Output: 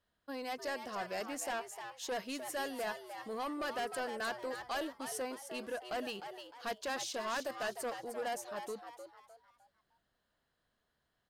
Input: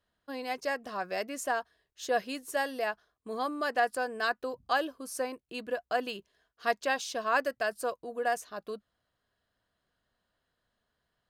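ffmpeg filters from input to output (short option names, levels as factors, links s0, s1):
-filter_complex "[0:a]acrossover=split=5700[s0][s1];[s0]asoftclip=type=tanh:threshold=0.0251[s2];[s2][s1]amix=inputs=2:normalize=0,asplit=5[s3][s4][s5][s6][s7];[s4]adelay=305,afreqshift=120,volume=0.376[s8];[s5]adelay=610,afreqshift=240,volume=0.135[s9];[s6]adelay=915,afreqshift=360,volume=0.049[s10];[s7]adelay=1220,afreqshift=480,volume=0.0176[s11];[s3][s8][s9][s10][s11]amix=inputs=5:normalize=0,volume=0.794"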